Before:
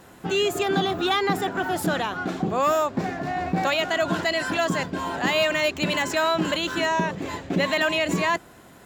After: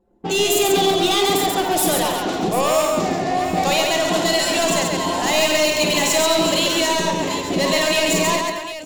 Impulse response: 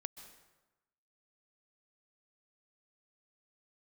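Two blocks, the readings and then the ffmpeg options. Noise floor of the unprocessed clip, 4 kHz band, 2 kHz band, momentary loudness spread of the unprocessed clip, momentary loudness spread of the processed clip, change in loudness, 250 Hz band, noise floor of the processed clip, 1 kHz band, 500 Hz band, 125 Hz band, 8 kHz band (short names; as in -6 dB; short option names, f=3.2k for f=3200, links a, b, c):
-49 dBFS, +8.5 dB, +2.5 dB, 6 LU, 5 LU, +6.0 dB, +4.5 dB, -29 dBFS, +5.0 dB, +6.0 dB, +2.0 dB, +15.5 dB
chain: -filter_complex "[0:a]asplit=2[a][b];[b]aecho=0:1:224:0.237[c];[a][c]amix=inputs=2:normalize=0,anlmdn=1.58,bass=f=250:g=-9,treble=f=4k:g=8,asoftclip=type=tanh:threshold=-23dB,equalizer=f=1.5k:t=o:w=0.71:g=-10.5,asplit=2[d][e];[e]aecho=0:1:52|137|746:0.501|0.708|0.266[f];[d][f]amix=inputs=2:normalize=0,volume=8.5dB"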